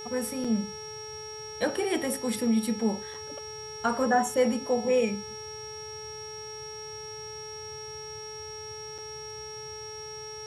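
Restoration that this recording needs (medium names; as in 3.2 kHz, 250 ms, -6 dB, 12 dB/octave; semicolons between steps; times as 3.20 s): de-hum 431.3 Hz, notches 28; band-stop 5.6 kHz, Q 30; interpolate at 0.44/3.14/8.98 s, 5.3 ms; noise print and reduce 30 dB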